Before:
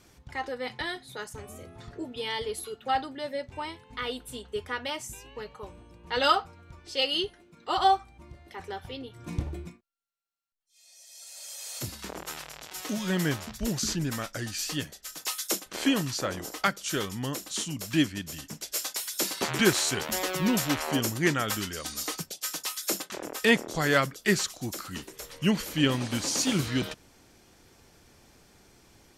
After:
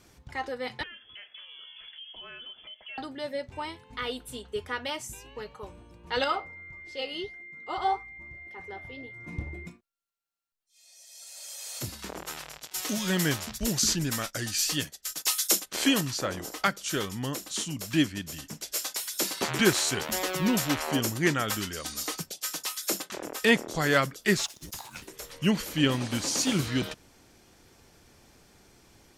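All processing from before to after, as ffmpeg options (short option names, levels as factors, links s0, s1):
-filter_complex "[0:a]asettb=1/sr,asplit=3[s0][s1][s2];[s0]atrim=end=0.834[s3];[s1]atrim=start=0.83:end=2.98,asetpts=PTS-STARTPTS,afade=t=in:d=0.004:c=qsin,afade=t=out:st=2.146:d=0.004:c=qsin,lowpass=f=3000:t=q:w=0.5098,lowpass=f=3000:t=q:w=0.6013,lowpass=f=3000:t=q:w=0.9,lowpass=f=3000:t=q:w=2.563,afreqshift=-3500,acompressor=threshold=0.00708:ratio=4:attack=3.2:release=140:knee=1:detection=peak[s4];[s2]atrim=start=2.976[s5];[s3][s4]acrossfade=d=0.004:c1=hsin:c2=qsin[s6];[s6][s5]acrossfade=d=0.004:c1=qsin:c2=hsin,asettb=1/sr,asplit=3[s7][s8][s9];[s7]atrim=end=6.244[s10];[s8]atrim=start=6.24:end=9.67,asetpts=PTS-STARTPTS,afade=t=in:d=0.004:c=qsin,afade=t=out:st=3.426:d=0.004:c=qsin,highshelf=f=2700:g=-9.5,flanger=delay=5.4:depth=7.6:regen=-80:speed=1.7:shape=sinusoidal,aeval=exprs='val(0)+0.00708*sin(2*PI*2100*n/s)':c=same[s11];[s9]atrim=start=9.666[s12];[s10][s11]acrossfade=d=0.004:c1=hsin:c2=qsin[s13];[s13][s12]acrossfade=d=0.004:c1=qsin:c2=hsin,asettb=1/sr,asplit=3[s14][s15][s16];[s14]atrim=end=12.584[s17];[s15]atrim=start=12.58:end=16.01,asetpts=PTS-STARTPTS,afade=t=in:d=0.004:c=qsin,afade=t=out:st=3.426:d=0.004:c=qsin,agate=range=0.282:threshold=0.00501:ratio=16:release=100:detection=peak,highshelf=f=2600:g=7[s18];[s16]atrim=start=16.006[s19];[s17][s18]acrossfade=d=0.004:c1=hsin:c2=qsin[s20];[s20][s19]acrossfade=d=0.004:c1=qsin:c2=hsin,asettb=1/sr,asplit=3[s21][s22][s23];[s21]atrim=end=24.374[s24];[s22]atrim=start=24.37:end=25.02,asetpts=PTS-STARTPTS,afade=t=in:d=0.004:c=qsin,afade=t=out:st=0.646:d=0.004:c=qsin,highpass=f=710:p=1,afreqshift=-410,aeval=exprs='sgn(val(0))*max(abs(val(0))-0.00224,0)':c=same[s25];[s23]atrim=start=25.016[s26];[s24][s25]acrossfade=d=0.004:c1=hsin:c2=qsin[s27];[s27][s26]acrossfade=d=0.004:c1=qsin:c2=hsin"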